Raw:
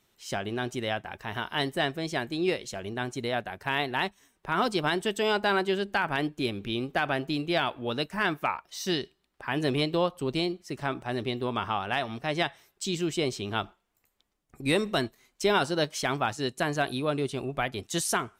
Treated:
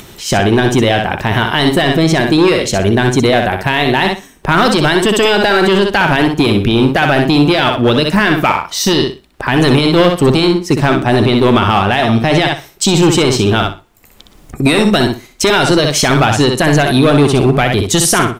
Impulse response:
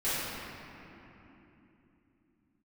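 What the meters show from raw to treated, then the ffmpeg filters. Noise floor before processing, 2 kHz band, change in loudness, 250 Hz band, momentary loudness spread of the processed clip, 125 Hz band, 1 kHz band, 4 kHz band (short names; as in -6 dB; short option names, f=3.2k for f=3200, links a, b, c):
-75 dBFS, +16.0 dB, +18.0 dB, +20.0 dB, 5 LU, +22.0 dB, +16.0 dB, +17.0 dB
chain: -filter_complex "[0:a]lowshelf=f=440:g=6.5,acrossover=split=1600[a][b];[a]volume=25.5dB,asoftclip=hard,volume=-25.5dB[c];[c][b]amix=inputs=2:normalize=0,aecho=1:1:62|124|186:0.447|0.0938|0.0197,acompressor=mode=upward:threshold=-46dB:ratio=2.5,alimiter=level_in=21dB:limit=-1dB:release=50:level=0:latency=1,volume=-1dB"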